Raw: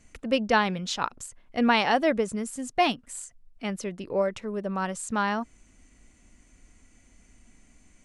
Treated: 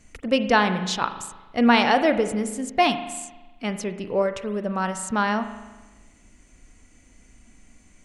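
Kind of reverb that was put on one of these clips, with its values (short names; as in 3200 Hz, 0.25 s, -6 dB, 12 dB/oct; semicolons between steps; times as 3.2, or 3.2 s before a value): spring tank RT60 1.2 s, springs 38 ms, chirp 55 ms, DRR 9 dB; gain +3.5 dB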